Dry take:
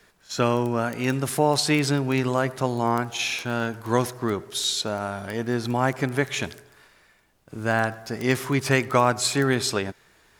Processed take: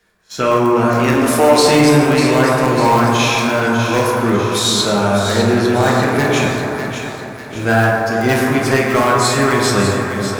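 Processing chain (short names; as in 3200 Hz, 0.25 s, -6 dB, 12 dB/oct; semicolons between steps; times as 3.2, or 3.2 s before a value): rattling part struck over -30 dBFS, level -28 dBFS; 1.13–1.58 steep high-pass 230 Hz 96 dB/oct; AGC gain up to 8.5 dB; flange 0.45 Hz, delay 4 ms, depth 7.3 ms, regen +80%; in parallel at -11.5 dB: wrapped overs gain 9.5 dB; on the sum: split-band echo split 1400 Hz, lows 0.426 s, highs 0.598 s, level -8.5 dB; reverb RT60 2.7 s, pre-delay 7 ms, DRR -4 dB; sample leveller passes 1; gain -1 dB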